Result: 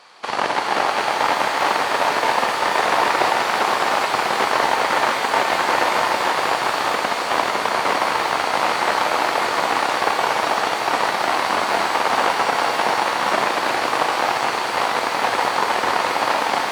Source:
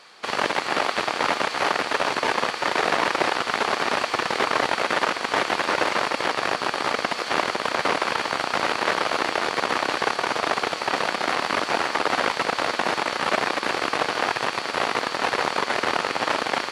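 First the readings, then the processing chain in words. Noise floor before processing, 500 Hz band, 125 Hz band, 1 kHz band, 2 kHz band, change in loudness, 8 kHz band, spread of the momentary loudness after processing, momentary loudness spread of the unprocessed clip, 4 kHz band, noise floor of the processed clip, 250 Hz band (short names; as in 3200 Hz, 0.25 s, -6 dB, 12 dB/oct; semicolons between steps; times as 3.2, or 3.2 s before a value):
-32 dBFS, +3.5 dB, +1.0 dB, +6.0 dB, +3.0 dB, +4.5 dB, +4.5 dB, 2 LU, 2 LU, +2.5 dB, -24 dBFS, +1.5 dB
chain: bell 860 Hz +6.5 dB 0.83 oct; shimmer reverb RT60 4 s, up +12 st, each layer -8 dB, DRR 2 dB; gain -1 dB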